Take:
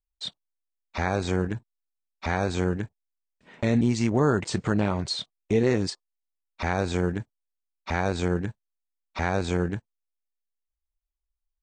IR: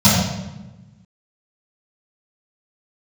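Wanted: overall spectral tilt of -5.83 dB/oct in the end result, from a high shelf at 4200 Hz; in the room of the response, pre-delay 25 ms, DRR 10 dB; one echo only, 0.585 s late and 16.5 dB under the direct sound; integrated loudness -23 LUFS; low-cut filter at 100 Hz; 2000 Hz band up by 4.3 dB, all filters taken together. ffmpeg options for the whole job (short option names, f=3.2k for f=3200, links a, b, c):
-filter_complex "[0:a]highpass=100,equalizer=f=2k:t=o:g=4.5,highshelf=f=4.2k:g=5,aecho=1:1:585:0.15,asplit=2[a][b];[1:a]atrim=start_sample=2205,adelay=25[c];[b][c]afir=irnorm=-1:irlink=0,volume=-34.5dB[d];[a][d]amix=inputs=2:normalize=0,volume=1dB"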